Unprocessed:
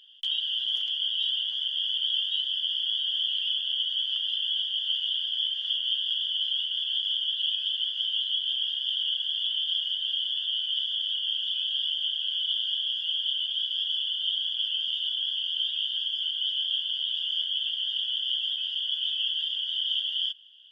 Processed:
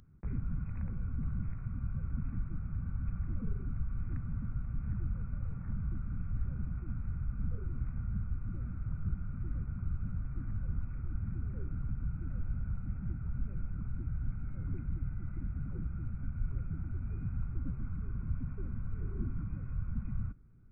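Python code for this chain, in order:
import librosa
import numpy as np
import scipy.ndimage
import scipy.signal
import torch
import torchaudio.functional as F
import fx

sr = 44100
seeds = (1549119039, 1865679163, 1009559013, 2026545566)

y = scipy.signal.sosfilt(scipy.signal.butter(4, 520.0, 'highpass', fs=sr, output='sos'), x)
y = fx.freq_invert(y, sr, carrier_hz=3000)
y = y * librosa.db_to_amplitude(1.0)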